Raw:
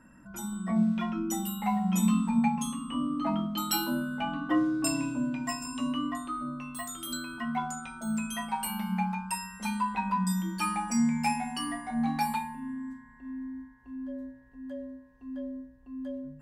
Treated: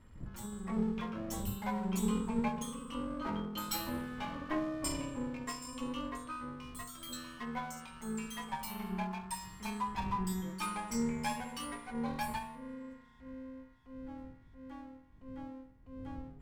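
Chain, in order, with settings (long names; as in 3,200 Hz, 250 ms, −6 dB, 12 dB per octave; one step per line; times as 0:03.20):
lower of the sound and its delayed copy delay 0.94 ms
wind on the microphone 98 Hz −46 dBFS
level −6.5 dB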